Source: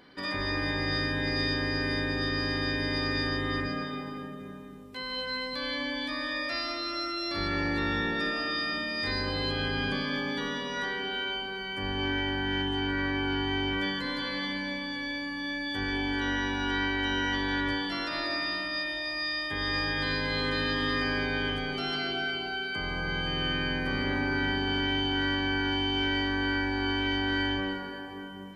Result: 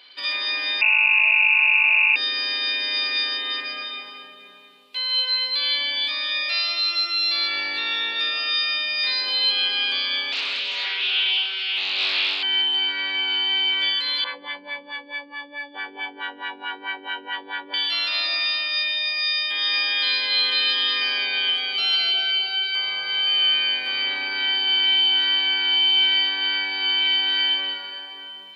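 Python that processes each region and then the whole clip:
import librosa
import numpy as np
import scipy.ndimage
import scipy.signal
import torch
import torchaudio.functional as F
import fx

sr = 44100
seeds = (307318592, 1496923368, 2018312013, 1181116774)

y = fx.chain(x, sr, fx.freq_invert(carrier_hz=2700),
    fx.env_flatten(amount_pct=50), at=(0.81, 2.16))
y = fx.chain(y, sr, fx.filter_lfo_notch(shape='saw_up', hz=1.9, low_hz=520.0, high_hz=1600.0, q=2.7),
    fx.doppler_dist(depth_ms=0.74), at=(10.32, 12.43))
y = fx.chain(y, sr, fx.filter_lfo_lowpass(shape='sine', hz=4.6, low_hz=350.0, high_hz=1600.0, q=1.7),
    fx.low_shelf(hz=220.0, db=-11.5),
    fx.env_flatten(amount_pct=50), at=(14.24, 17.74))
y = scipy.signal.sosfilt(scipy.signal.butter(2, 710.0, 'highpass', fs=sr, output='sos'), y)
y = fx.band_shelf(y, sr, hz=3300.0, db=15.0, octaves=1.2)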